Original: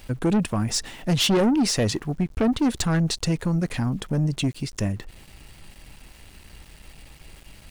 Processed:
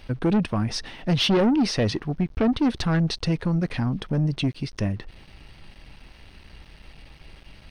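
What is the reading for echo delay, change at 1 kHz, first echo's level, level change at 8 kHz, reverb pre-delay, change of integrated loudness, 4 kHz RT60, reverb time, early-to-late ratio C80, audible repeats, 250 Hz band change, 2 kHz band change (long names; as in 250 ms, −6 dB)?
no echo audible, 0.0 dB, no echo audible, −10.0 dB, no reverb audible, −0.5 dB, no reverb audible, no reverb audible, no reverb audible, no echo audible, 0.0 dB, 0.0 dB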